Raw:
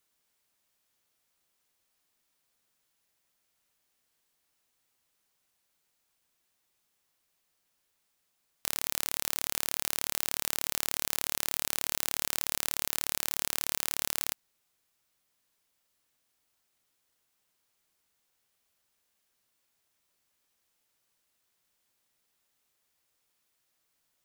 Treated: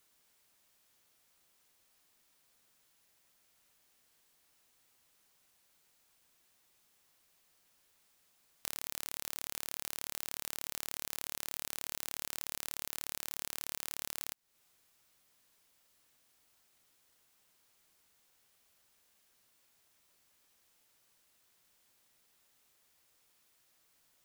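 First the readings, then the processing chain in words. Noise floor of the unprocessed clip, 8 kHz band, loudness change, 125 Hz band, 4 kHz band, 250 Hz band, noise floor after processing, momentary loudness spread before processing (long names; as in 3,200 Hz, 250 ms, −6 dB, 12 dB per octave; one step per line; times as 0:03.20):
−77 dBFS, −9.0 dB, −9.0 dB, −9.0 dB, −9.0 dB, −9.0 dB, −84 dBFS, 1 LU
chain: downward compressor 4 to 1, threshold −41 dBFS, peak gain reduction 14.5 dB
level +5.5 dB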